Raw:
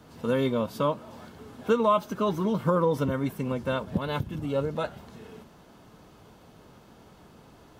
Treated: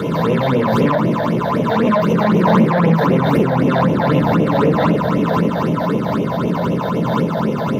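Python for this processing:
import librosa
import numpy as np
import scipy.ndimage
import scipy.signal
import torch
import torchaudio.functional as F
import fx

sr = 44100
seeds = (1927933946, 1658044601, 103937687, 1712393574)

p1 = fx.bin_compress(x, sr, power=0.4)
p2 = fx.low_shelf(p1, sr, hz=460.0, db=9.5)
p3 = fx.room_shoebox(p2, sr, seeds[0], volume_m3=550.0, walls='furnished', distance_m=4.4)
p4 = 10.0 ** (-7.0 / 20.0) * np.tanh(p3 / 10.0 ** (-7.0 / 20.0))
p5 = p4 + fx.echo_filtered(p4, sr, ms=320, feedback_pct=83, hz=4400.0, wet_db=-9, dry=0)
p6 = fx.phaser_stages(p5, sr, stages=8, low_hz=330.0, high_hz=1400.0, hz=3.9, feedback_pct=45)
p7 = scipy.signal.sosfilt(scipy.signal.butter(2, 250.0, 'highpass', fs=sr, output='sos'), p6)
p8 = fx.peak_eq(p7, sr, hz=9600.0, db=-3.0, octaves=2.1)
p9 = fx.pre_swell(p8, sr, db_per_s=21.0)
y = p9 * librosa.db_to_amplitude(1.0)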